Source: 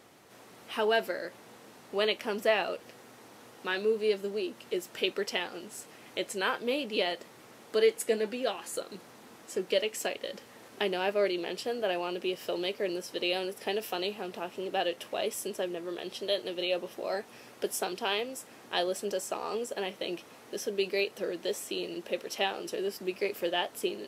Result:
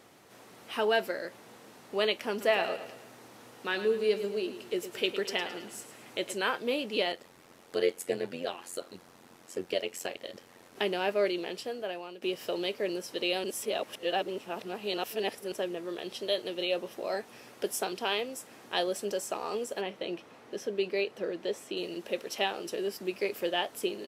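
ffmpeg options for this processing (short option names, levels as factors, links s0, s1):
-filter_complex "[0:a]asplit=3[s0][s1][s2];[s0]afade=t=out:st=2.4:d=0.02[s3];[s1]aecho=1:1:108|216|324|432|540:0.266|0.12|0.0539|0.0242|0.0109,afade=t=in:st=2.4:d=0.02,afade=t=out:st=6.35:d=0.02[s4];[s2]afade=t=in:st=6.35:d=0.02[s5];[s3][s4][s5]amix=inputs=3:normalize=0,asettb=1/sr,asplit=3[s6][s7][s8];[s6]atrim=end=7.124[s9];[s7]atrim=start=7.12:end=10.76,asetpts=PTS-STARTPTS,afade=t=in:d=0.004:c=qsin,afade=t=out:st=3.636:d=0.004:c=qsin,tremolo=f=89:d=0.824[s10];[s8]atrim=start=10.756[s11];[s9][s10]acrossfade=d=0.004:c1=hsin:c2=qsin[s12];[s12][s11]acrossfade=d=0.004:c1=qsin:c2=hsin,asettb=1/sr,asplit=3[s13][s14][s15];[s13]atrim=end=19.814[s16];[s14]atrim=start=19.81:end=21.77,asetpts=PTS-STARTPTS,afade=t=in:d=0.004:c=qsin,afade=t=out:st=1.956:d=0.004:c=qsin,lowpass=f=2800:p=1[s17];[s15]atrim=start=21.766[s18];[s16][s17]acrossfade=d=0.004:c1=hsin:c2=qsin[s19];[s19][s18]acrossfade=d=0.004:c1=qsin:c2=hsin,asplit=4[s20][s21][s22][s23];[s20]atrim=end=12.22,asetpts=PTS-STARTPTS,afade=t=out:st=11.3:d=0.92:silence=0.223872[s24];[s21]atrim=start=12.22:end=13.442,asetpts=PTS-STARTPTS,afade=t=in:d=0.004:c=hsin:silence=0.223872[s25];[s22]atrim=start=13.438:end=15.522,asetpts=PTS-STARTPTS,areverse[s26];[s23]atrim=start=15.518[s27];[s24][s25]concat=n=2:v=0:a=1[s28];[s28][s26]acrossfade=d=0.004:c1=hsin:c2=hsin[s29];[s29][s27]acrossfade=d=0.004:c1=hsin:c2=hsin"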